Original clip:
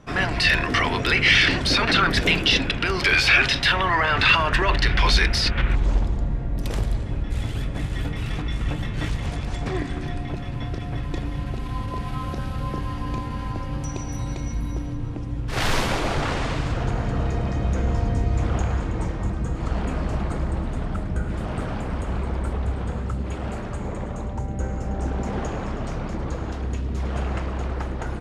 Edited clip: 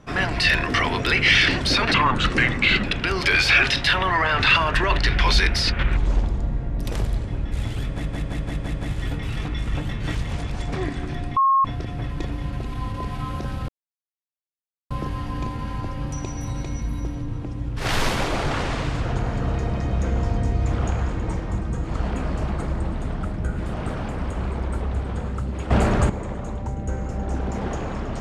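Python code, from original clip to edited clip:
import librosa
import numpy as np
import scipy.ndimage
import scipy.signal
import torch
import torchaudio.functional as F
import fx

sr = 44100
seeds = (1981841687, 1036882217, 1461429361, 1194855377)

y = fx.edit(x, sr, fx.speed_span(start_s=1.94, length_s=0.68, speed=0.76),
    fx.stutter(start_s=7.67, slice_s=0.17, count=6),
    fx.bleep(start_s=10.3, length_s=0.28, hz=1080.0, db=-14.0),
    fx.insert_silence(at_s=12.62, length_s=1.22),
    fx.clip_gain(start_s=23.42, length_s=0.39, db=11.5), tone=tone)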